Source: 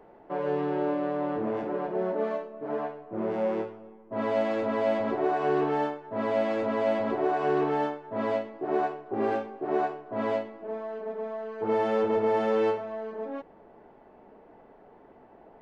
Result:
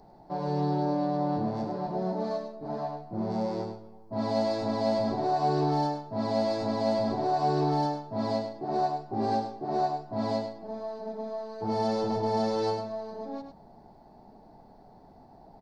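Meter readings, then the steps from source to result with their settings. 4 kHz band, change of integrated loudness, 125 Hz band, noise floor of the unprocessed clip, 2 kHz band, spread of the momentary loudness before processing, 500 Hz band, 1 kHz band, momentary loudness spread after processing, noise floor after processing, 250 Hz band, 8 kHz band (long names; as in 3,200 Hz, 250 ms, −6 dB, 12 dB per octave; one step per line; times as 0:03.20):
+6.5 dB, −1.0 dB, +9.0 dB, −54 dBFS, −8.5 dB, 10 LU, −3.0 dB, +1.5 dB, 11 LU, −54 dBFS, +1.0 dB, can't be measured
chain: drawn EQ curve 160 Hz 0 dB, 480 Hz −16 dB, 790 Hz −4 dB, 1,200 Hz −16 dB, 3,000 Hz −18 dB, 4,400 Hz +10 dB, 7,100 Hz −1 dB
single-tap delay 102 ms −7.5 dB
level +7.5 dB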